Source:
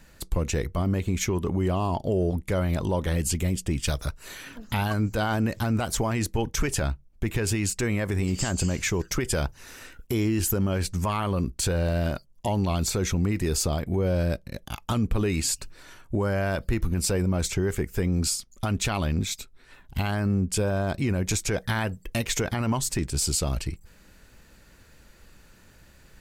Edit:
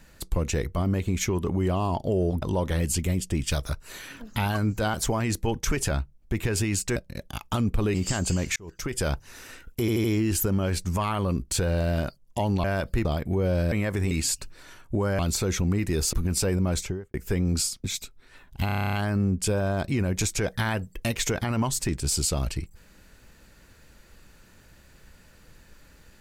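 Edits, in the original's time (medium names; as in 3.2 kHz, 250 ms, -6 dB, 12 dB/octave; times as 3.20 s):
2.42–2.78 s: delete
5.30–5.85 s: delete
7.87–8.26 s: swap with 14.33–15.31 s
8.88–9.40 s: fade in
10.12 s: stutter 0.08 s, 4 plays
12.72–13.66 s: swap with 16.39–16.80 s
17.41–17.81 s: studio fade out
18.51–19.21 s: delete
20.03 s: stutter 0.03 s, 10 plays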